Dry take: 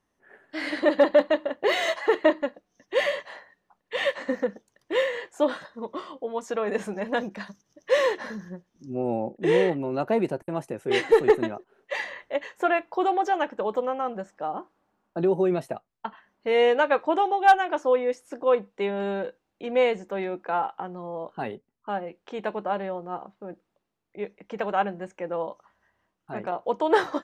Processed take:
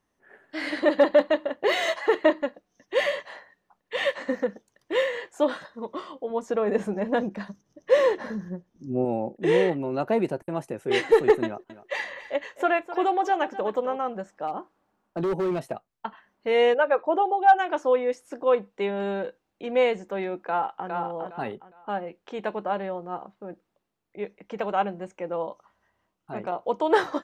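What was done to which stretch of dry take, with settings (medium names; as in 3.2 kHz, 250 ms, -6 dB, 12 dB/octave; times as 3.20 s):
6.30–9.05 s: tilt shelf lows +5 dB
11.44–13.97 s: delay 256 ms -14.5 dB
14.47–15.72 s: hard clipper -22.5 dBFS
16.74–17.59 s: resonances exaggerated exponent 1.5
20.40–20.89 s: echo throw 410 ms, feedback 25%, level -4.5 dB
24.59–26.93 s: peaking EQ 1.7 kHz -6.5 dB 0.23 oct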